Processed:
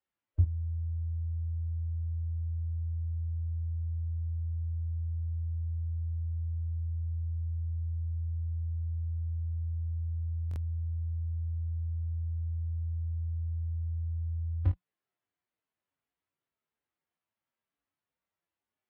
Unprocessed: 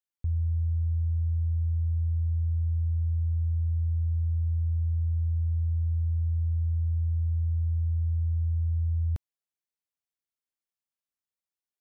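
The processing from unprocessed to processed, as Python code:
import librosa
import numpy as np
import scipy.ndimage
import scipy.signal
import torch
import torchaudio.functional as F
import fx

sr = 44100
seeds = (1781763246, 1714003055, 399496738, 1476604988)

p1 = scipy.signal.sosfilt(scipy.signal.butter(2, 52.0, 'highpass', fs=sr, output='sos'), x)
p2 = fx.dynamic_eq(p1, sr, hz=180.0, q=5.6, threshold_db=-58.0, ratio=4.0, max_db=3)
p3 = fx.stretch_vocoder(p2, sr, factor=1.6)
p4 = fx.air_absorb(p3, sr, metres=460.0)
p5 = fx.doubler(p4, sr, ms=21.0, db=-9.0)
p6 = p5 + fx.room_early_taps(p5, sr, ms=(18, 32, 52), db=(-7.0, -7.0, -9.0), dry=0)
p7 = fx.buffer_glitch(p6, sr, at_s=(10.49,), block=1024, repeats=2)
y = F.gain(torch.from_numpy(p7), 9.0).numpy()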